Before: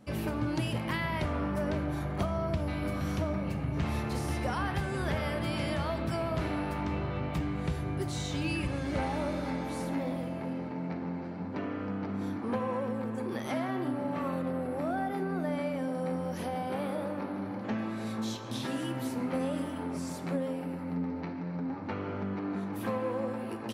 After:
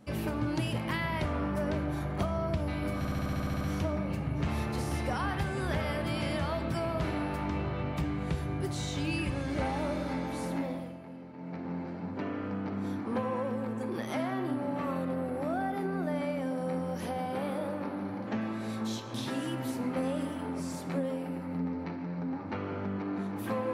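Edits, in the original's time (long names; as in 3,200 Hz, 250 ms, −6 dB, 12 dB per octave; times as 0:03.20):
0:02.98: stutter 0.07 s, 10 plays
0:09.94–0:11.13: duck −10 dB, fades 0.43 s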